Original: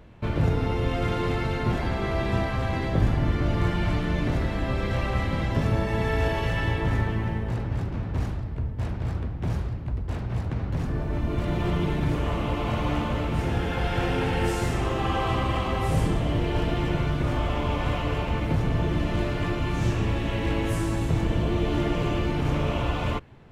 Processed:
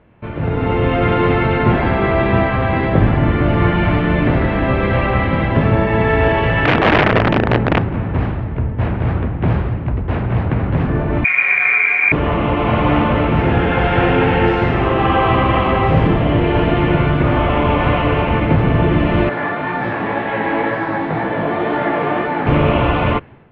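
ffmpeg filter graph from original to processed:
-filter_complex "[0:a]asettb=1/sr,asplit=3[a][b][c];[a]atrim=end=6.654[d];[b]atrim=start=6.65:end=7.81,asetpts=PTS-STARTPTS,afade=t=in:d=0.004:c=qsin,afade=t=out:st=1.156:d=0.004:c=qsin,equalizer=f=190:t=o:w=2.7:g=5.5,tremolo=f=40:d=0.261,aeval=exprs='(mod(8.41*val(0)+1,2)-1)/8.41':c=same[e];[c]atrim=start=7.806[f];[d][e]acrossfade=d=0.004:c1=hsin:c2=qsin[g];[g][f]acrossfade=d=0.004:c1=qsin:c2=hsin,asettb=1/sr,asplit=3[h][i][j];[h]atrim=end=11.244[k];[i]atrim=start=11.24:end=12.12,asetpts=PTS-STARTPTS,afade=t=in:d=0.004:c=qsin,afade=t=out:st=0.876:d=0.004:c=qsin,lowpass=f=2.1k:t=q:w=0.5098,lowpass=f=2.1k:t=q:w=0.6013,lowpass=f=2.1k:t=q:w=0.9,lowpass=f=2.1k:t=q:w=2.563,afreqshift=-2500,aeval=exprs='sgn(val(0))*max(abs(val(0))-0.0119,0)':c=same[l];[j]atrim=start=12.116[m];[k][l]acrossfade=d=0.004:c1=hsin:c2=qsin[n];[n][m]acrossfade=d=0.004:c1=qsin:c2=hsin,asettb=1/sr,asplit=3[o][p][q];[o]atrim=end=19.294[r];[p]atrim=start=19.29:end=22.47,asetpts=PTS-STARTPTS,afade=t=in:d=0.004:c=qsin,afade=t=out:st=3.176:d=0.004:c=qsin,flanger=delay=15.5:depth=5.9:speed=2,highpass=240,equalizer=f=350:t=q:w=4:g=-5,equalizer=f=800:t=q:w=4:g=7,equalizer=f=1.7k:t=q:w=4:g=6,equalizer=f=2.8k:t=q:w=4:g=-9,lowpass=f=5.2k:w=0.5412,lowpass=f=5.2k:w=1.3066[s];[q]atrim=start=22.466[t];[r][s]acrossfade=d=0.004:c1=hsin:c2=qsin[u];[u][t]acrossfade=d=0.004:c1=qsin:c2=hsin,lowpass=f=2.8k:w=0.5412,lowpass=f=2.8k:w=1.3066,lowshelf=f=75:g=-11,dynaudnorm=f=380:g=3:m=14dB,volume=1dB"

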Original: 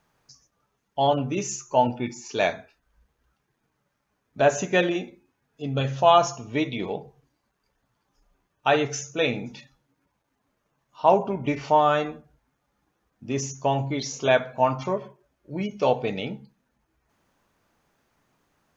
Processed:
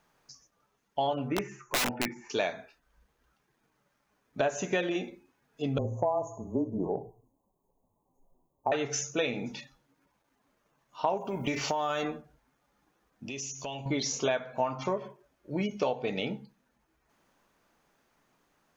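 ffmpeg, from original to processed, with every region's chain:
-filter_complex "[0:a]asettb=1/sr,asplit=3[a][b][c];[a]atrim=end=1.284[d];[b]atrim=start=1.28:end=2.3,asetpts=PTS-STARTPTS,afade=t=in:d=0.004:c=qsin,afade=t=out:st=1.016:d=0.004:c=qsin,acrossover=split=4400[e][f];[f]acompressor=threshold=-48dB:ratio=4:attack=1:release=60[g];[e][g]amix=inputs=2:normalize=0,highshelf=f=2.7k:t=q:w=3:g=-13,aeval=exprs='(mod(7.94*val(0)+1,2)-1)/7.94':c=same[h];[c]atrim=start=2.296[i];[d][h]acrossfade=d=0.004:c1=hsin:c2=qsin[j];[j][i]acrossfade=d=0.004:c1=qsin:c2=hsin,asettb=1/sr,asplit=3[k][l][m];[k]atrim=end=5.784[n];[l]atrim=start=5.78:end=8.72,asetpts=PTS-STARTPTS,afade=t=in:d=0.004:c=qsin,afade=t=out:st=2.936:d=0.004:c=qsin,equalizer=f=4.4k:w=0.37:g=-11,afreqshift=-21,asuperstop=centerf=2700:order=20:qfactor=0.5[o];[m]atrim=start=8.716[p];[n][o]acrossfade=d=0.004:c1=hsin:c2=qsin[q];[q][p]acrossfade=d=0.004:c1=qsin:c2=hsin,asettb=1/sr,asplit=3[r][s][t];[r]atrim=end=11.174[u];[s]atrim=start=11.17:end=12.03,asetpts=PTS-STARTPTS,afade=t=in:d=0.004:c=qsin,afade=t=out:st=0.856:d=0.004:c=qsin,aemphasis=mode=production:type=75kf,acompressor=threshold=-24dB:ratio=6:attack=3.2:release=140:knee=1:detection=peak[v];[t]atrim=start=12.026[w];[u][v]acrossfade=d=0.004:c1=hsin:c2=qsin[x];[x][w]acrossfade=d=0.004:c1=qsin:c2=hsin,asettb=1/sr,asplit=3[y][z][aa];[y]atrim=end=13.284[ab];[z]atrim=start=13.28:end=13.86,asetpts=PTS-STARTPTS,afade=t=in:d=0.004:c=qsin,afade=t=out:st=0.576:d=0.004:c=qsin,highshelf=f=2.1k:t=q:w=3:g=7,acompressor=threshold=-39dB:ratio=4:attack=3.2:release=140:knee=1:detection=peak[ac];[aa]atrim=start=13.856[ad];[ab][ac]acrossfade=d=0.004:c1=hsin:c2=qsin[ae];[ae][ad]acrossfade=d=0.004:c1=qsin:c2=hsin,dynaudnorm=f=740:g=9:m=3dB,equalizer=f=85:t=o:w=1.5:g=-8,acompressor=threshold=-26dB:ratio=6"

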